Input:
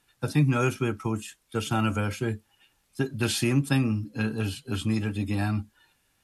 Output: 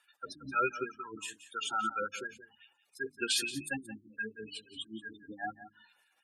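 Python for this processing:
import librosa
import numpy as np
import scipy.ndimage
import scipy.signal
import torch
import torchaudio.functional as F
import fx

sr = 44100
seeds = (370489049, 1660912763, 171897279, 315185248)

p1 = fx.octave_divider(x, sr, octaves=1, level_db=-2.0)
p2 = fx.spec_gate(p1, sr, threshold_db=-15, keep='strong')
p3 = fx.filter_lfo_highpass(p2, sr, shape='sine', hz=5.8, low_hz=580.0, high_hz=1600.0, q=1.3)
p4 = fx.hum_notches(p3, sr, base_hz=50, count=6)
y = p4 + fx.echo_single(p4, sr, ms=177, db=-14.0, dry=0)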